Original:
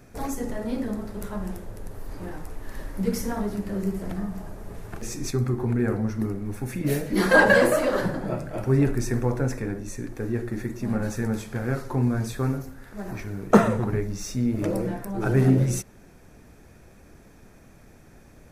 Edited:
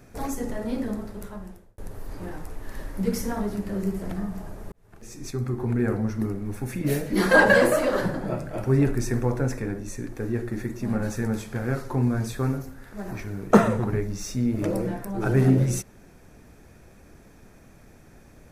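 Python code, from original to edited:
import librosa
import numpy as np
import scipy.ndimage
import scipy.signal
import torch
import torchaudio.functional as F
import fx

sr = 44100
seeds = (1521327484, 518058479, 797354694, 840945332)

y = fx.edit(x, sr, fx.fade_out_span(start_s=0.92, length_s=0.86),
    fx.fade_in_span(start_s=4.72, length_s=1.08), tone=tone)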